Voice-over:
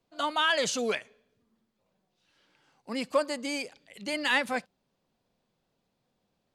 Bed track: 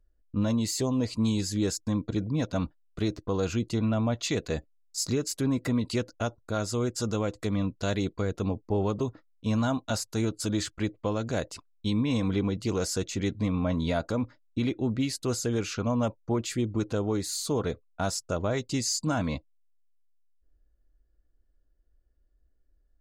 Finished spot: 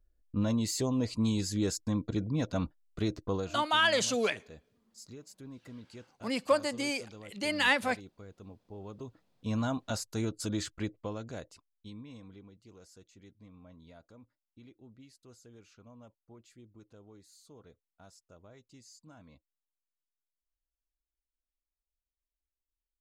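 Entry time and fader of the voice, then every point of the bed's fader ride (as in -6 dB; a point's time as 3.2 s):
3.35 s, 0.0 dB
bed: 3.34 s -3 dB
3.65 s -20.5 dB
8.68 s -20.5 dB
9.56 s -5 dB
10.78 s -5 dB
12.53 s -27 dB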